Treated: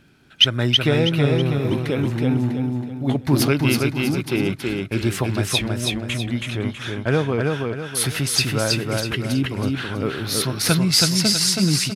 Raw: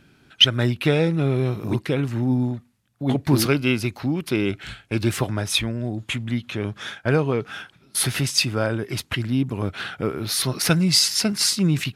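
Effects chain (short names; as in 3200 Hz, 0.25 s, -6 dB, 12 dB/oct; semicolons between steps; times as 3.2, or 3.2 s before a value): crackle 14/s -47 dBFS; on a send: feedback echo 0.324 s, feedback 38%, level -3 dB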